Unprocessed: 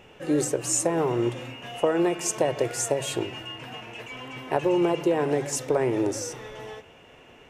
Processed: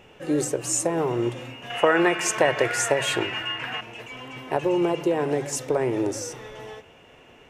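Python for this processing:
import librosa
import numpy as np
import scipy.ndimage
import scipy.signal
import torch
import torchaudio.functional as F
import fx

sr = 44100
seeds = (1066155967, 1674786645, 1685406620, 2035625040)

y = fx.peak_eq(x, sr, hz=1700.0, db=14.5, octaves=1.7, at=(1.7, 3.81))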